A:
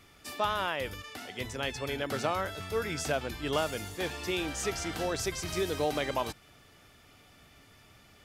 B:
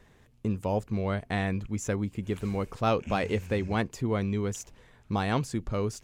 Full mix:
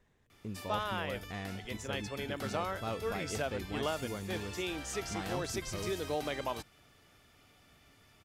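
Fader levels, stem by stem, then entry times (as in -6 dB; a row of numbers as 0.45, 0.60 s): -5.0, -12.5 dB; 0.30, 0.00 s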